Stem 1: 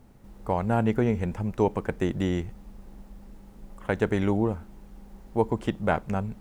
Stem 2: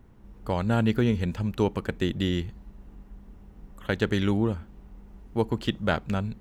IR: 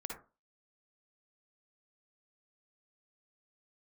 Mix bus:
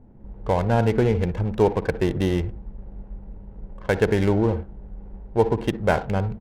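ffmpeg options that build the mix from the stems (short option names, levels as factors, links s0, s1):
-filter_complex "[0:a]volume=1.33,asplit=2[s0][s1];[s1]volume=0.422[s2];[1:a]dynaudnorm=f=100:g=3:m=5.01,asoftclip=type=tanh:threshold=0.178,adelay=1.5,volume=0.355[s3];[2:a]atrim=start_sample=2205[s4];[s2][s4]afir=irnorm=-1:irlink=0[s5];[s0][s3][s5]amix=inputs=3:normalize=0,equalizer=f=1200:w=7.3:g=-8.5,adynamicsmooth=sensitivity=6:basefreq=730"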